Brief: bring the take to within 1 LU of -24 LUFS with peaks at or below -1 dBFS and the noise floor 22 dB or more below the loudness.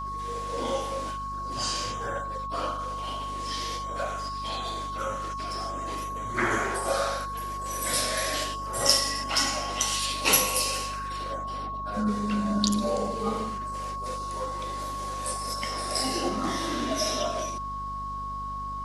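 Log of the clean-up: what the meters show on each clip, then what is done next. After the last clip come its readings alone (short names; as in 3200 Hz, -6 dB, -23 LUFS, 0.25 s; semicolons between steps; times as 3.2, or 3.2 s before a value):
hum 50 Hz; harmonics up to 250 Hz; hum level -38 dBFS; steady tone 1100 Hz; tone level -32 dBFS; loudness -28.5 LUFS; peak -2.5 dBFS; loudness target -24.0 LUFS
-> de-hum 50 Hz, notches 5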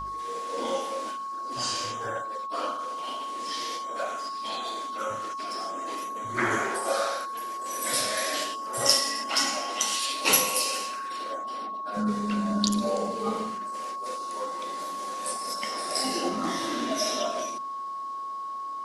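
hum none; steady tone 1100 Hz; tone level -32 dBFS
-> notch 1100 Hz, Q 30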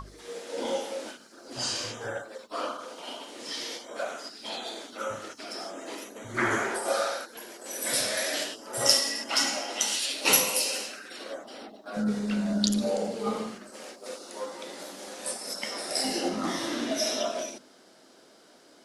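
steady tone none; loudness -29.5 LUFS; peak -3.0 dBFS; loudness target -24.0 LUFS
-> gain +5.5 dB; limiter -1 dBFS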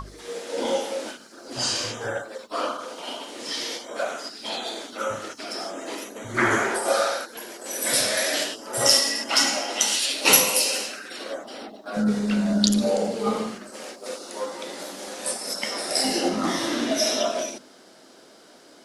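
loudness -24.0 LUFS; peak -1.0 dBFS; noise floor -51 dBFS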